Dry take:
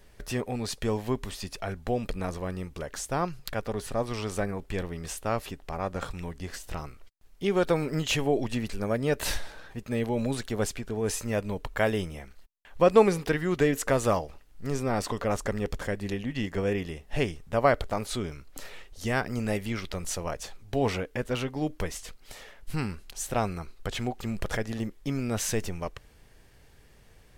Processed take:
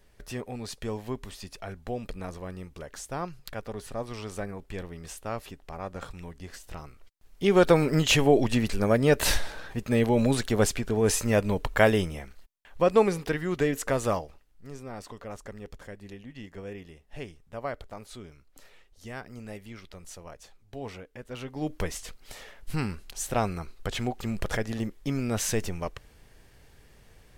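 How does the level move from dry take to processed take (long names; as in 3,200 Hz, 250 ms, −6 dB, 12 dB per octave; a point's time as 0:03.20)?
0:06.86 −5 dB
0:07.58 +5.5 dB
0:11.82 +5.5 dB
0:12.82 −2 dB
0:14.14 −2 dB
0:14.68 −12 dB
0:21.23 −12 dB
0:21.75 +1 dB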